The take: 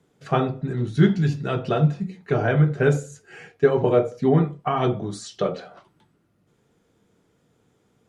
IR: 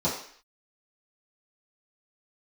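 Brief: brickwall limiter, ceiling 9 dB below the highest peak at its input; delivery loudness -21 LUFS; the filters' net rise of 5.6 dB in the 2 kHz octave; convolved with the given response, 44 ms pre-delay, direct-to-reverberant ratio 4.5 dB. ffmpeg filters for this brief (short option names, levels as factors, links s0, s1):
-filter_complex "[0:a]equalizer=f=2000:t=o:g=8,alimiter=limit=0.266:level=0:latency=1,asplit=2[s0][s1];[1:a]atrim=start_sample=2205,adelay=44[s2];[s1][s2]afir=irnorm=-1:irlink=0,volume=0.168[s3];[s0][s3]amix=inputs=2:normalize=0,volume=0.944"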